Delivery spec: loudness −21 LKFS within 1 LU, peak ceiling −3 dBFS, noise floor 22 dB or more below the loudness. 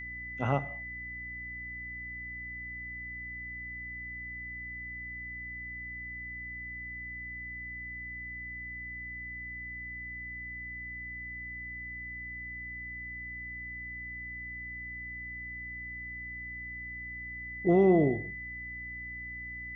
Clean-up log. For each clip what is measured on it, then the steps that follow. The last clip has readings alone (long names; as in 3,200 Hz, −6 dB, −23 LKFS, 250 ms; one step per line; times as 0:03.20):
mains hum 60 Hz; hum harmonics up to 300 Hz; level of the hum −47 dBFS; interfering tone 2,000 Hz; level of the tone −39 dBFS; integrated loudness −36.0 LKFS; sample peak −13.0 dBFS; target loudness −21.0 LKFS
→ hum removal 60 Hz, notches 5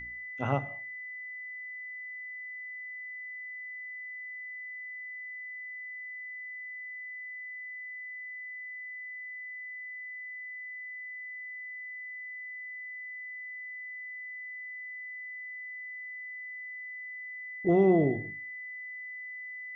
mains hum none found; interfering tone 2,000 Hz; level of the tone −39 dBFS
→ notch filter 2,000 Hz, Q 30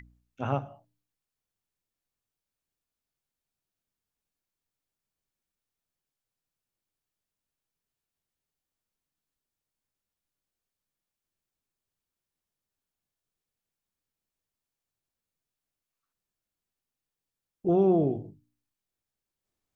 interfering tone none found; integrated loudness −27.5 LKFS; sample peak −13.0 dBFS; target loudness −21.0 LKFS
→ level +6.5 dB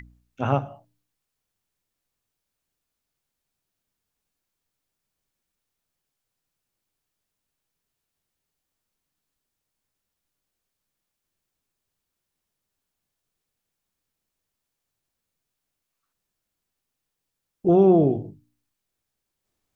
integrated loudness −21.0 LKFS; sample peak −6.5 dBFS; background noise floor −83 dBFS